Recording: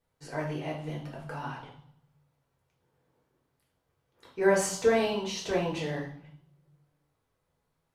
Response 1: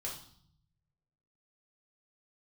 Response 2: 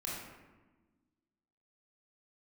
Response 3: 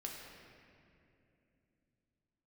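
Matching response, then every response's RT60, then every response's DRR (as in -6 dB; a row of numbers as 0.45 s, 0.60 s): 1; 0.60 s, 1.3 s, 2.7 s; -4.0 dB, -6.0 dB, -1.5 dB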